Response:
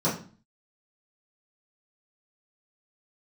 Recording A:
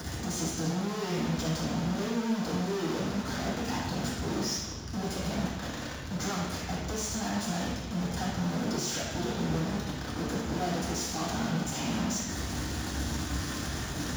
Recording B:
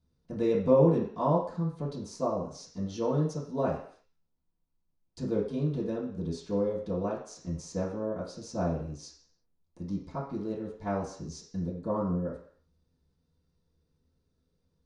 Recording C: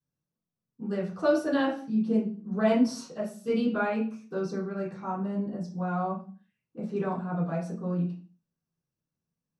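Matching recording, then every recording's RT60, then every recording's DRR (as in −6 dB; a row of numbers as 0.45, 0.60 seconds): C; 1.1, 0.55, 0.40 seconds; −6.0, −11.0, −10.5 decibels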